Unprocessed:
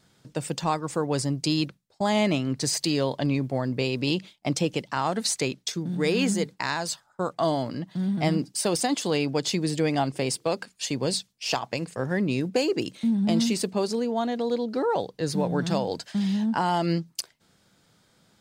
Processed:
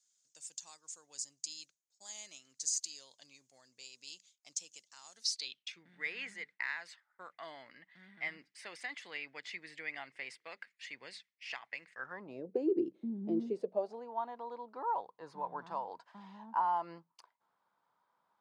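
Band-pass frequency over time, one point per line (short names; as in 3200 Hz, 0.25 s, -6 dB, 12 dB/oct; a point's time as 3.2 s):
band-pass, Q 6.3
5.14 s 6700 Hz
5.83 s 2000 Hz
11.91 s 2000 Hz
12.61 s 350 Hz
13.38 s 350 Hz
14.11 s 990 Hz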